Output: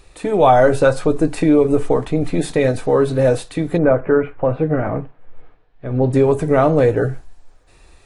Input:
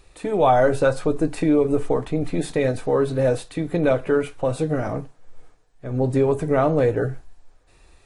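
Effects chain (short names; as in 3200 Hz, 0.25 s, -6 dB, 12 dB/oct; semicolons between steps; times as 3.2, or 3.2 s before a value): 3.77–6.12 LPF 1700 Hz -> 4100 Hz 24 dB/oct; gain +5 dB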